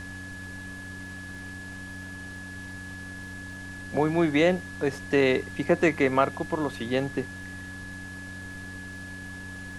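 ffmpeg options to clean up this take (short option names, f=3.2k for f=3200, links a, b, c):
-af "adeclick=t=4,bandreject=f=93.6:t=h:w=4,bandreject=f=187.2:t=h:w=4,bandreject=f=280.8:t=h:w=4,bandreject=f=1.7k:w=30,afftdn=nr=30:nf=-40"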